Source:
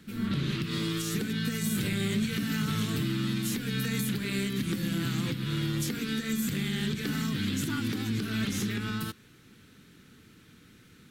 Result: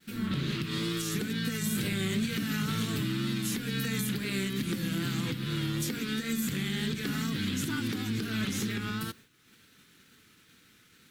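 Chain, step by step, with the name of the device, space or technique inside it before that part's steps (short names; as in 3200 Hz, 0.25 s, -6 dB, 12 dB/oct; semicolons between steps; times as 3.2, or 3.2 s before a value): noise-reduction cassette on a plain deck (mismatched tape noise reduction encoder only; wow and flutter; white noise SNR 36 dB); expander -44 dBFS; low shelf 200 Hz -3 dB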